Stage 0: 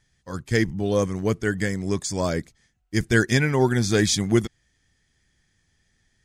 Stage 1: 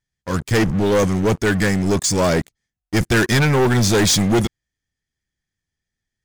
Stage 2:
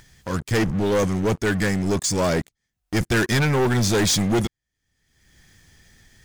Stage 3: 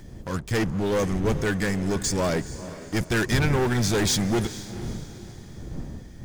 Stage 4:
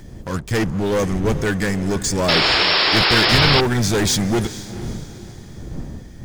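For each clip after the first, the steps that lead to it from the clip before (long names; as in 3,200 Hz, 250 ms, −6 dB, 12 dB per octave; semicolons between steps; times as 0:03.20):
leveller curve on the samples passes 5; level −6 dB
upward compression, threshold −23 dBFS; level −4 dB
wind on the microphone 160 Hz −32 dBFS; feedback delay with all-pass diffusion 452 ms, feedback 43%, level −14 dB; level −3.5 dB
sound drawn into the spectrogram noise, 0:02.28–0:03.61, 280–5,500 Hz −21 dBFS; level +4.5 dB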